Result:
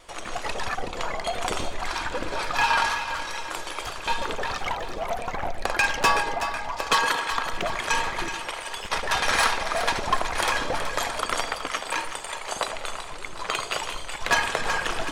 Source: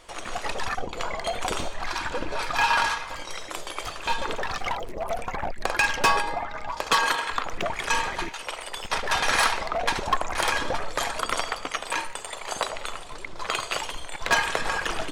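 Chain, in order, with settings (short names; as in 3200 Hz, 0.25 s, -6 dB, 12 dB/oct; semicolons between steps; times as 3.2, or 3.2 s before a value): wow and flutter 26 cents; split-band echo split 740 Hz, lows 0.113 s, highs 0.374 s, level -9.5 dB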